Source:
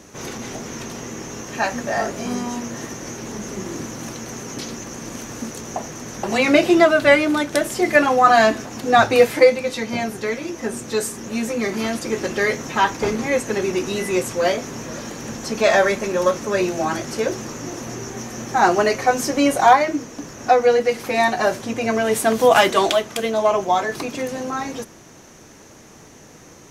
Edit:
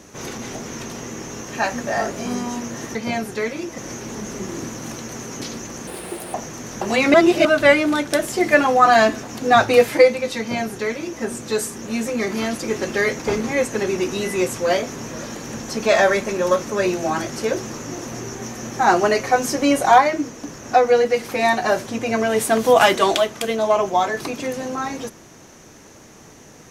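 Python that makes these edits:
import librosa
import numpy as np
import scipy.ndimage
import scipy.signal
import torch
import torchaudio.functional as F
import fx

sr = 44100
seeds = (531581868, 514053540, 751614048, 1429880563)

y = fx.edit(x, sr, fx.speed_span(start_s=5.04, length_s=0.72, speed=1.53),
    fx.reverse_span(start_s=6.56, length_s=0.31),
    fx.duplicate(start_s=9.81, length_s=0.83, to_s=2.95),
    fx.cut(start_s=12.61, length_s=0.33), tone=tone)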